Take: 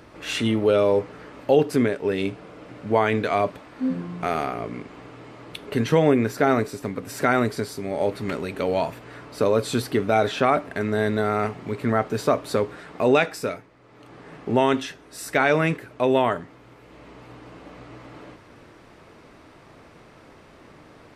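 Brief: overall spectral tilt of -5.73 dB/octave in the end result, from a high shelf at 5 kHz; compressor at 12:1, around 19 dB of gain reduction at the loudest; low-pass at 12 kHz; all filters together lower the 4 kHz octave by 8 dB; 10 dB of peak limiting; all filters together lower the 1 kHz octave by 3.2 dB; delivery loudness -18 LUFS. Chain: low-pass 12 kHz; peaking EQ 1 kHz -4 dB; peaking EQ 4 kHz -8 dB; treble shelf 5 kHz -5.5 dB; compression 12:1, threshold -33 dBFS; trim +24 dB; peak limiter -5.5 dBFS

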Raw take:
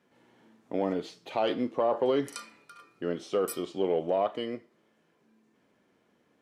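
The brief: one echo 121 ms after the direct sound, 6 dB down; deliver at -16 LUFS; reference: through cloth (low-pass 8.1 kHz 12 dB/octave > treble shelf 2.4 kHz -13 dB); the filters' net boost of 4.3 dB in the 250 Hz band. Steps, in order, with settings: low-pass 8.1 kHz 12 dB/octave; peaking EQ 250 Hz +5.5 dB; treble shelf 2.4 kHz -13 dB; delay 121 ms -6 dB; trim +12.5 dB

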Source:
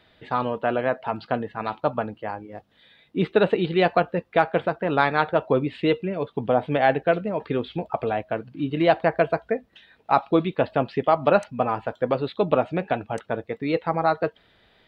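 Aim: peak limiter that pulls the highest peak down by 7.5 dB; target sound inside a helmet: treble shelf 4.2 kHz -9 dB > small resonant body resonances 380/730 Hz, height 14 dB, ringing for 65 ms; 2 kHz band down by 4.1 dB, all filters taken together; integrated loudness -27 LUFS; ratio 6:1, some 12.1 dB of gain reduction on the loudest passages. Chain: peaking EQ 2 kHz -4 dB; compression 6:1, threshold -27 dBFS; peak limiter -21.5 dBFS; treble shelf 4.2 kHz -9 dB; small resonant body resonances 380/730 Hz, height 14 dB, ringing for 65 ms; trim +2.5 dB

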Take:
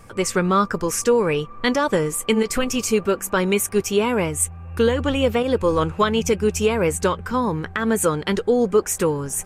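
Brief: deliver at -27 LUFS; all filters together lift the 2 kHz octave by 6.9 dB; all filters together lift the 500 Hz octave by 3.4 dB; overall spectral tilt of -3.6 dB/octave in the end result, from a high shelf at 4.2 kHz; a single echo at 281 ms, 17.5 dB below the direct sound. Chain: peaking EQ 500 Hz +3.5 dB; peaking EQ 2 kHz +8 dB; treble shelf 4.2 kHz +3.5 dB; delay 281 ms -17.5 dB; trim -9.5 dB

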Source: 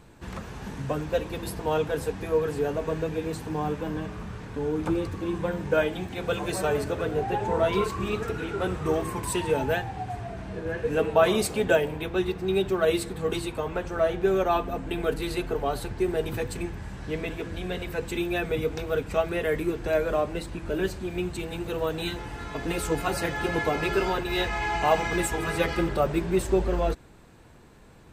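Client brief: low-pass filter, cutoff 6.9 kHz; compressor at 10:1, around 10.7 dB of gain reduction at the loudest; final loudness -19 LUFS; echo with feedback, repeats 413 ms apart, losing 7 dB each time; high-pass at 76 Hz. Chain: high-pass 76 Hz; low-pass 6.9 kHz; compression 10:1, threshold -27 dBFS; feedback delay 413 ms, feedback 45%, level -7 dB; trim +13 dB

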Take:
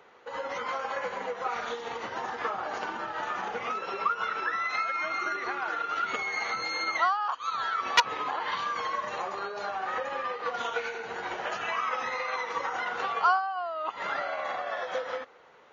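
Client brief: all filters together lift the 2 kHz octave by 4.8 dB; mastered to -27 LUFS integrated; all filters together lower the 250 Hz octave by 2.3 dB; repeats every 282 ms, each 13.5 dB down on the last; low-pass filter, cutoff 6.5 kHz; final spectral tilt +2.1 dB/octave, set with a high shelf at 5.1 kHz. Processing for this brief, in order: low-pass 6.5 kHz; peaking EQ 250 Hz -3.5 dB; peaking EQ 2 kHz +6.5 dB; treble shelf 5.1 kHz -3.5 dB; feedback delay 282 ms, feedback 21%, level -13.5 dB; trim +1 dB

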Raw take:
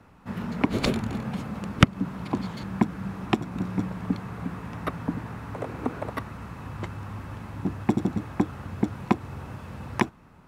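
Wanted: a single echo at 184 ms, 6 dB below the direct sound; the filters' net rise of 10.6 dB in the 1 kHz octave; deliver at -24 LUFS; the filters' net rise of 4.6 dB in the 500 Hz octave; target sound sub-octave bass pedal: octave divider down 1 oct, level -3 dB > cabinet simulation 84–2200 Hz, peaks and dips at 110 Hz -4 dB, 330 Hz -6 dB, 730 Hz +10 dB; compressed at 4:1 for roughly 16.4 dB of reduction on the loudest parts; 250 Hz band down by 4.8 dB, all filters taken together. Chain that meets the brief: peaking EQ 250 Hz -6 dB; peaking EQ 500 Hz +3.5 dB; peaking EQ 1 kHz +7.5 dB; compression 4:1, threshold -31 dBFS; delay 184 ms -6 dB; octave divider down 1 oct, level -3 dB; cabinet simulation 84–2200 Hz, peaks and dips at 110 Hz -4 dB, 330 Hz -6 dB, 730 Hz +10 dB; trim +10 dB

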